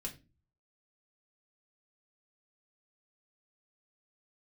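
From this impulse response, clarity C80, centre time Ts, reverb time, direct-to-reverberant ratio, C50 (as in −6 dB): 19.5 dB, 11 ms, 0.30 s, −1.0 dB, 13.5 dB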